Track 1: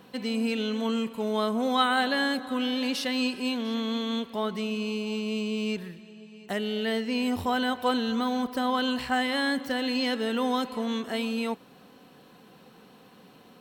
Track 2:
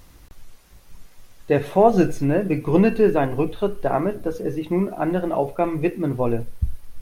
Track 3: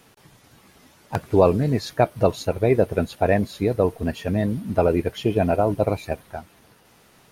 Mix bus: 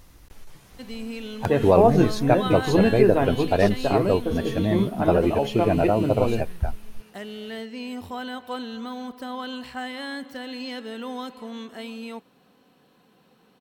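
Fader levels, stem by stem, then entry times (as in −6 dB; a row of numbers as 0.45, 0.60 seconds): −6.5, −2.5, −1.5 decibels; 0.65, 0.00, 0.30 seconds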